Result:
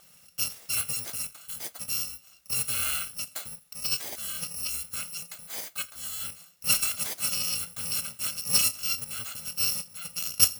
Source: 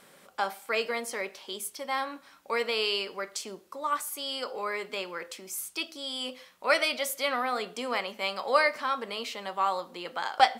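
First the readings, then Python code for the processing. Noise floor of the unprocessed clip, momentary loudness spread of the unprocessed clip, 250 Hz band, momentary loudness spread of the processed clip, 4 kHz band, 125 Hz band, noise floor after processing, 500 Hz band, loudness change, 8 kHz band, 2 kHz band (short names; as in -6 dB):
-57 dBFS, 12 LU, -7.5 dB, 12 LU, +1.5 dB, n/a, -57 dBFS, -20.0 dB, +2.5 dB, +12.5 dB, -7.0 dB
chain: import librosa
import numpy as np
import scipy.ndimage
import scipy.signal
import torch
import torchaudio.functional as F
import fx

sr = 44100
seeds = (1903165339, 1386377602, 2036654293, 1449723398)

y = fx.bit_reversed(x, sr, seeds[0], block=128)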